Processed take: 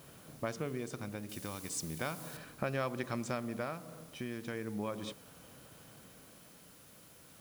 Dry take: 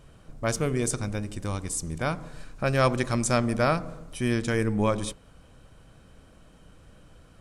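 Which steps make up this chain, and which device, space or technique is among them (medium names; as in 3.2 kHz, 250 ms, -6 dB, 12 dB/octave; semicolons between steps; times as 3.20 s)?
medium wave at night (band-pass 140–4200 Hz; compression 5:1, threshold -33 dBFS, peak gain reduction 14.5 dB; tremolo 0.36 Hz, depth 46%; whistle 10 kHz -66 dBFS; white noise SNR 19 dB); 1.29–2.37 s: treble shelf 3.4 kHz +11 dB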